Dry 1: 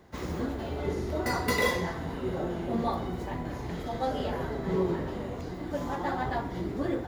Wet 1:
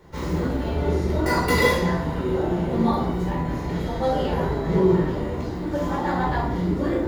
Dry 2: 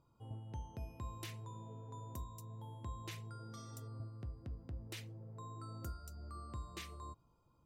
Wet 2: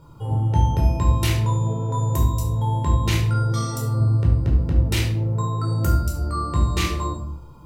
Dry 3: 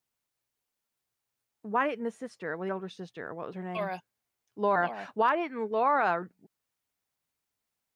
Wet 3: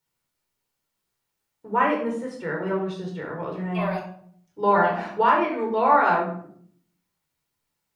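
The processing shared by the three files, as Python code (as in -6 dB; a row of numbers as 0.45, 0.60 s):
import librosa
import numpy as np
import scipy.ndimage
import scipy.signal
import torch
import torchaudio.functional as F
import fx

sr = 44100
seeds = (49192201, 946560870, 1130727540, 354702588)

y = fx.room_shoebox(x, sr, seeds[0], volume_m3=830.0, walls='furnished', distance_m=4.5)
y = y * 10.0 ** (-6 / 20.0) / np.max(np.abs(y))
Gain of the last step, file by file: +1.0, +18.0, +0.5 dB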